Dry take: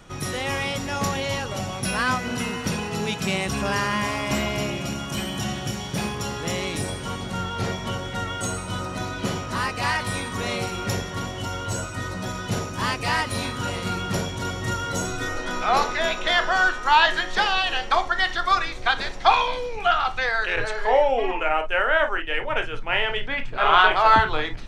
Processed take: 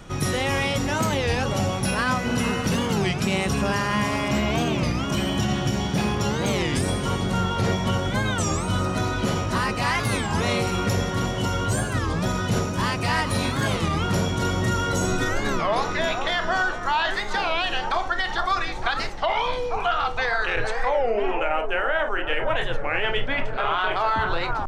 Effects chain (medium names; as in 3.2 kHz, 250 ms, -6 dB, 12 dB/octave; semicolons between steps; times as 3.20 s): bass shelf 470 Hz +4 dB; gain riding within 3 dB 0.5 s; 4.28–6.53 s: peaking EQ 11 kHz -6.5 dB 1.1 oct; bucket-brigade echo 457 ms, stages 4096, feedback 62%, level -11 dB; peak limiter -13.5 dBFS, peak gain reduction 8.5 dB; warped record 33 1/3 rpm, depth 250 cents